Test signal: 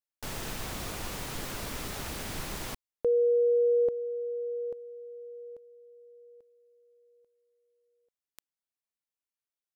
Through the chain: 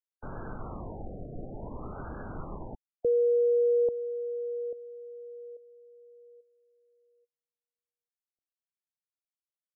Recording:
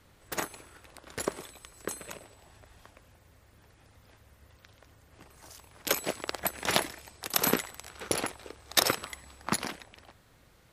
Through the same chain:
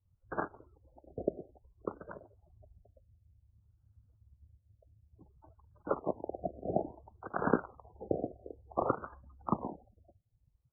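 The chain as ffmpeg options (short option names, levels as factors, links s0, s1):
-filter_complex "[0:a]afftdn=nr=32:nf=-46,acrossover=split=250|1600[s0][s1][s2];[s2]alimiter=limit=0.178:level=0:latency=1:release=255[s3];[s0][s1][s3]amix=inputs=3:normalize=0,afftfilt=real='re*lt(b*sr/1024,730*pow(1700/730,0.5+0.5*sin(2*PI*0.57*pts/sr)))':imag='im*lt(b*sr/1024,730*pow(1700/730,0.5+0.5*sin(2*PI*0.57*pts/sr)))':win_size=1024:overlap=0.75"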